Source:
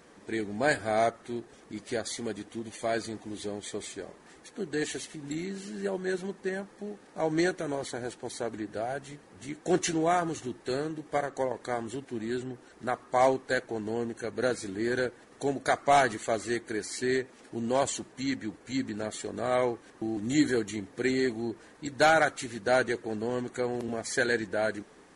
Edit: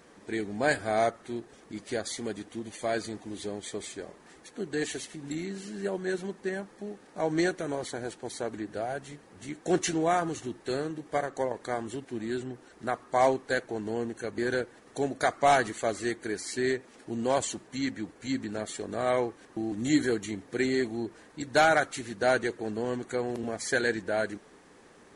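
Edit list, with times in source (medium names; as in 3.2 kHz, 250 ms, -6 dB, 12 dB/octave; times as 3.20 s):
14.38–14.83 s: delete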